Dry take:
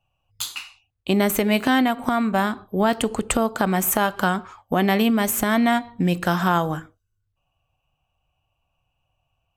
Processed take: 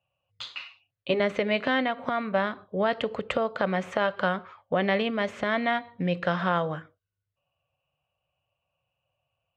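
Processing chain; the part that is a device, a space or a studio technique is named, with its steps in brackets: guitar cabinet (cabinet simulation 110–4100 Hz, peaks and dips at 230 Hz -7 dB, 330 Hz -6 dB, 550 Hz +9 dB, 820 Hz -5 dB, 2 kHz +4 dB); 0.59–1.20 s: comb 7.2 ms, depth 78%; trim -5 dB

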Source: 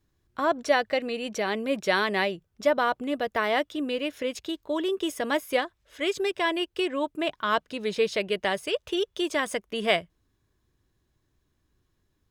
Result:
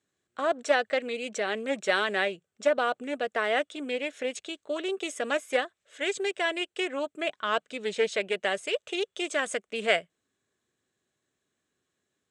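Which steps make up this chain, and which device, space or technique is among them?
full-range speaker at full volume (loudspeaker Doppler distortion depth 0.15 ms; cabinet simulation 280–8800 Hz, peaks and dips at 320 Hz -7 dB, 960 Hz -9 dB, 5 kHz -7 dB, 7.9 kHz +9 dB)

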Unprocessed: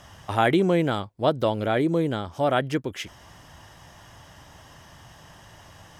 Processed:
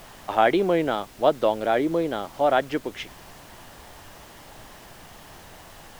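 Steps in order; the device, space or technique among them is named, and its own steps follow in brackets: horn gramophone (band-pass 260–4300 Hz; peaking EQ 700 Hz +4 dB; wow and flutter; pink noise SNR 21 dB)

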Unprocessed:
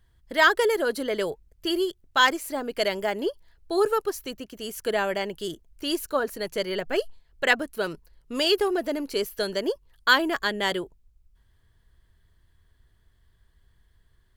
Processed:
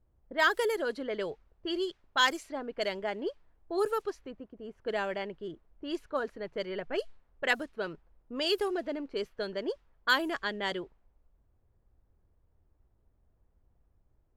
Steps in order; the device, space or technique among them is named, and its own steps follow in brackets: cassette deck with a dynamic noise filter (white noise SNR 32 dB; level-controlled noise filter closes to 550 Hz, open at -18 dBFS); 1.25–2.58 s: peaking EQ 5.4 kHz +4 dB 1.9 oct; trim -7 dB

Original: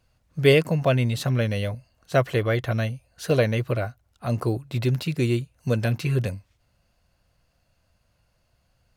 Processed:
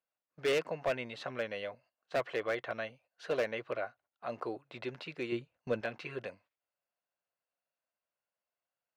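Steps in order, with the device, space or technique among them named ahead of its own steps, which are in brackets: walkie-talkie (band-pass 490–2800 Hz; hard clipper -20 dBFS, distortion -11 dB; gate -56 dBFS, range -14 dB); 5.32–5.81 s: bass shelf 290 Hz +10 dB; trim -6 dB

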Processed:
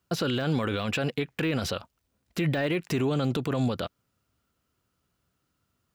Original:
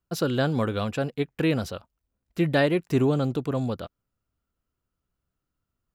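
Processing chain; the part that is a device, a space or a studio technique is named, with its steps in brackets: dynamic bell 2.4 kHz, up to +6 dB, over -43 dBFS, Q 0.91; broadcast voice chain (high-pass 79 Hz; de-esser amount 90%; compression, threshold -24 dBFS, peak gain reduction 7 dB; peaking EQ 3.9 kHz +3.5 dB 2.5 oct; peak limiter -26 dBFS, peak gain reduction 11.5 dB); trim +8 dB

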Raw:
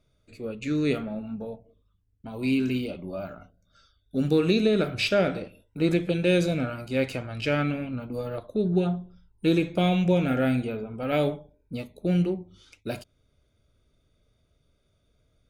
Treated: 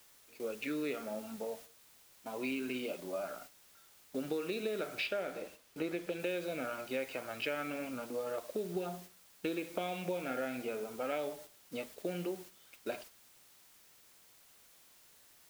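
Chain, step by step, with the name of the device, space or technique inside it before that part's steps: baby monitor (band-pass 420–3100 Hz; compression 6:1, threshold -34 dBFS, peak gain reduction 14.5 dB; white noise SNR 15 dB; gate -51 dBFS, range -7 dB); 5.06–6.20 s: treble shelf 5.6 kHz -5 dB

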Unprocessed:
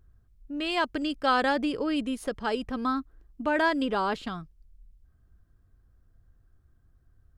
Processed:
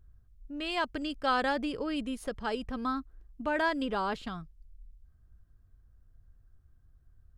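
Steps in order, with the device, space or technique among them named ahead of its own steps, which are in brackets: low shelf boost with a cut just above (bass shelf 96 Hz +7 dB; peaking EQ 320 Hz -2.5 dB 0.77 oct); trim -4 dB

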